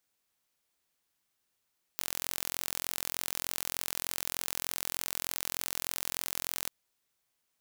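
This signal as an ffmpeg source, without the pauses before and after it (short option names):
-f lavfi -i "aevalsrc='0.473*eq(mod(n,1018),0)':d=4.7:s=44100"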